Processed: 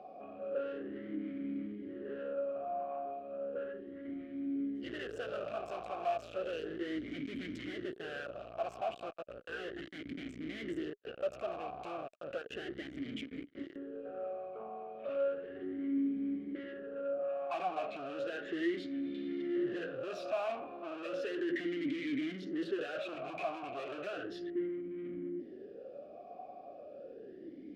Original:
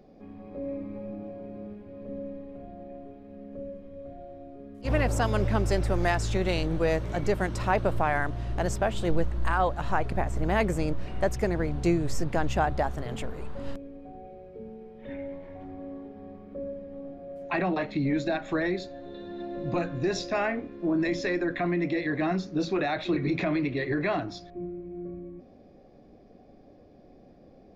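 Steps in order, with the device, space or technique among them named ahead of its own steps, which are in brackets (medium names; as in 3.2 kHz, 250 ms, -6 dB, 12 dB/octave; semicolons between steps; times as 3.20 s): talk box (valve stage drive 42 dB, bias 0.2; talking filter a-i 0.34 Hz); trim +16 dB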